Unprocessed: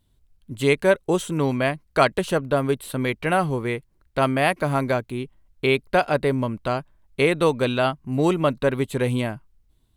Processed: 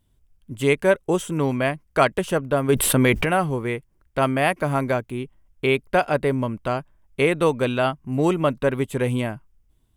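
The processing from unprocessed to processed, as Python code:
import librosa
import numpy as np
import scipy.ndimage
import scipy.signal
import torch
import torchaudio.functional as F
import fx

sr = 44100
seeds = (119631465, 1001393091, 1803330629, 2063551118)

y = fx.peak_eq(x, sr, hz=4100.0, db=-9.5, octaves=0.27)
y = fx.env_flatten(y, sr, amount_pct=70, at=(2.68, 3.24), fade=0.02)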